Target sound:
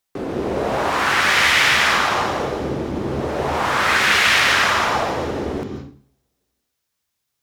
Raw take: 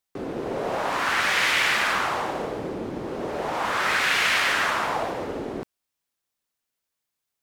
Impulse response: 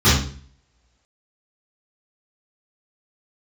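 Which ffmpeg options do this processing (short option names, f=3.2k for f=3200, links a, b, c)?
-filter_complex "[0:a]asplit=2[a][b];[b]highshelf=f=2.3k:g=11[c];[1:a]atrim=start_sample=2205,adelay=124[d];[c][d]afir=irnorm=-1:irlink=0,volume=-33dB[e];[a][e]amix=inputs=2:normalize=0,volume=5.5dB"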